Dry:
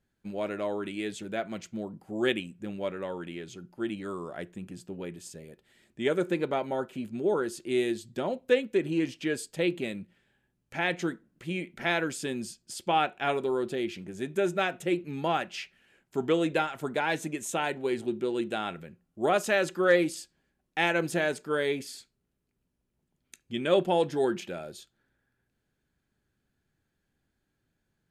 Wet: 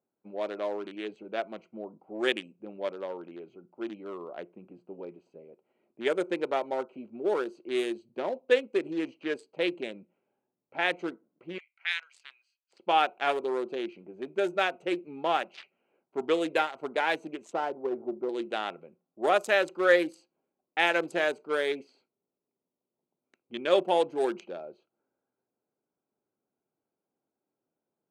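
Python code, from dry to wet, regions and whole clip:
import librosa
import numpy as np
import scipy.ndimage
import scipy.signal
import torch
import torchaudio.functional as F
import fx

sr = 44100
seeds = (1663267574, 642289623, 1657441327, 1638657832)

y = fx.chain(x, sr, fx.ladder_highpass(hz=1500.0, resonance_pct=30),
    fx.tilt_eq(slope=2.5), at=(11.58, 12.73))
y = fx.chain(y, sr, fx.lowpass(hz=1400.0, slope=24),
    fx.doppler_dist(depth_ms=0.17), at=(17.53, 18.29))
y = fx.wiener(y, sr, points=25)
y = scipy.signal.sosfilt(scipy.signal.butter(2, 420.0, 'highpass', fs=sr, output='sos'), y)
y = fx.env_lowpass(y, sr, base_hz=2300.0, full_db=-25.5)
y = F.gain(torch.from_numpy(y), 2.5).numpy()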